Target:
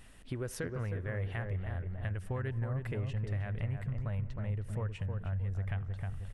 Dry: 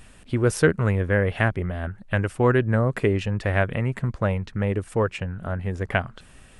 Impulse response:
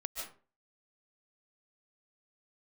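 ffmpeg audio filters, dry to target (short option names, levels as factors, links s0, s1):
-filter_complex "[0:a]asubboost=boost=8:cutoff=100,alimiter=limit=0.266:level=0:latency=1:release=96,asplit=2[s0][s1];[s1]lowpass=f=5000:w=0.5412,lowpass=f=5000:w=1.3066[s2];[1:a]atrim=start_sample=2205,asetrate=61740,aresample=44100,adelay=84[s3];[s2][s3]afir=irnorm=-1:irlink=0,volume=0.119[s4];[s0][s4]amix=inputs=2:normalize=0,asetrate=45864,aresample=44100,equalizer=f=1900:w=7.9:g=2.5,asplit=2[s5][s6];[s6]adelay=313,lowpass=f=1300:p=1,volume=0.596,asplit=2[s7][s8];[s8]adelay=313,lowpass=f=1300:p=1,volume=0.35,asplit=2[s9][s10];[s10]adelay=313,lowpass=f=1300:p=1,volume=0.35,asplit=2[s11][s12];[s12]adelay=313,lowpass=f=1300:p=1,volume=0.35[s13];[s5][s7][s9][s11][s13]amix=inputs=5:normalize=0,acompressor=threshold=0.0355:ratio=2.5,volume=0.398"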